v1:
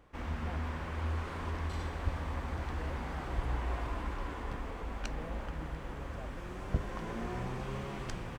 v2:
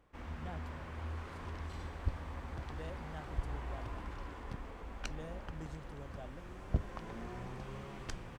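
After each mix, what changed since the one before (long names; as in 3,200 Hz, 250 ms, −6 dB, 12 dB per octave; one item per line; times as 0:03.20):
speech: remove Butterworth band-reject 5,300 Hz, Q 0.81
first sound −7.0 dB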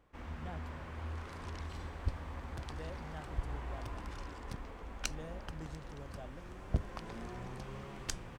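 second sound: remove low-pass filter 1,700 Hz 6 dB per octave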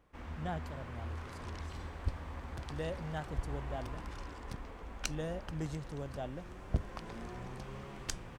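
speech +9.0 dB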